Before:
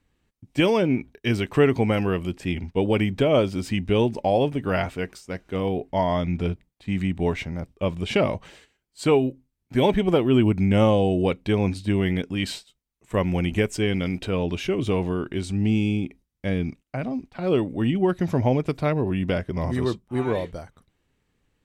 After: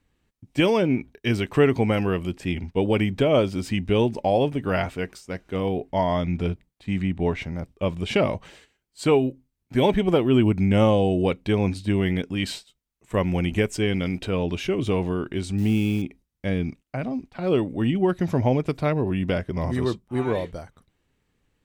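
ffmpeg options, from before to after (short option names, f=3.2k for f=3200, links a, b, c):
-filter_complex "[0:a]asettb=1/sr,asplit=3[a][b][c];[a]atrim=end=6.984[d];[b]atrim=start=6.98:end=7.42,asetpts=PTS-STARTPTS,afade=t=in:d=0.004:c=qsin,afade=t=out:st=0.436:d=0.004:c=qsin,highshelf=f=5.6k:g=-10[e];[c]atrim=start=7.416[f];[d][e]acrossfade=d=0.004:c1=hsin:c2=qsin[g];[g][f]acrossfade=d=0.004:c1=qsin:c2=hsin,asettb=1/sr,asplit=3[h][i][j];[h]atrim=end=15.584[k];[i]atrim=start=15.58:end=16.02,asetpts=PTS-STARTPTS,afade=t=in:d=0.004:c=qsin,afade=t=out:st=0.436:d=0.004:c=qsin,acrusher=bits=8:dc=4:mix=0:aa=0.000001[l];[j]atrim=start=16.016[m];[k][l]acrossfade=d=0.004:c1=hsin:c2=qsin[n];[n][m]acrossfade=d=0.004:c1=qsin:c2=hsin"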